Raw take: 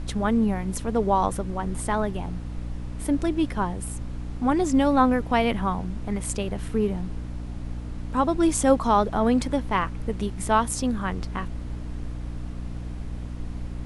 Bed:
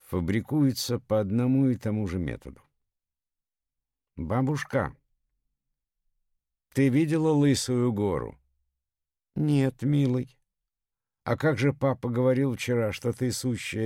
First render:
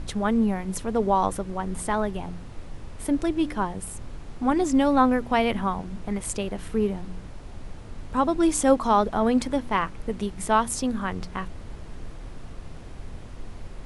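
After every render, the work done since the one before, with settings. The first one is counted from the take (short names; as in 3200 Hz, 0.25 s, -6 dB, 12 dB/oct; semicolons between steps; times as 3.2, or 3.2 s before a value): de-hum 60 Hz, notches 5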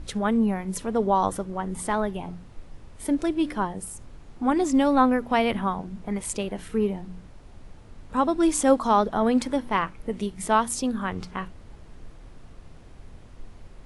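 noise print and reduce 7 dB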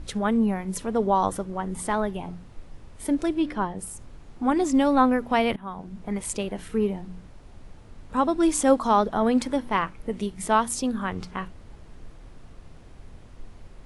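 3.39–3.79 air absorption 66 m; 5.56–6.24 fade in equal-power, from -21.5 dB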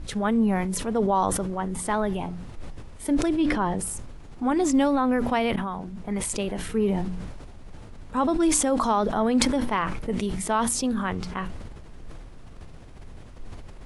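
limiter -14 dBFS, peak gain reduction 7.5 dB; sustainer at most 32 dB/s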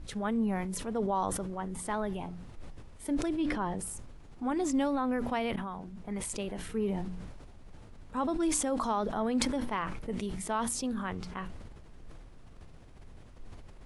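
gain -8 dB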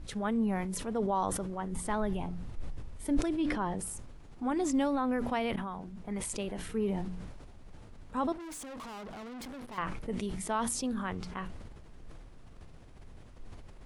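1.72–3.2 low shelf 130 Hz +8.5 dB; 8.32–9.78 tube stage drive 42 dB, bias 0.55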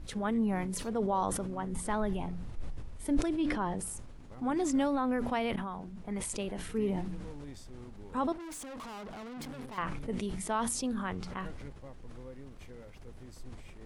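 add bed -25 dB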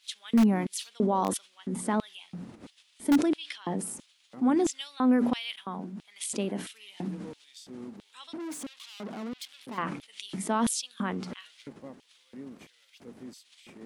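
LFO high-pass square 1.5 Hz 230–3300 Hz; in parallel at -10 dB: wrapped overs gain 17 dB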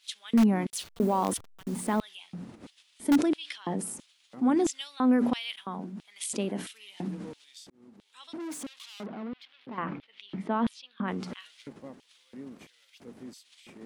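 0.7–2.01 level-crossing sampler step -42.5 dBFS; 7.7–8.39 fade in; 9.06–11.08 air absorption 340 m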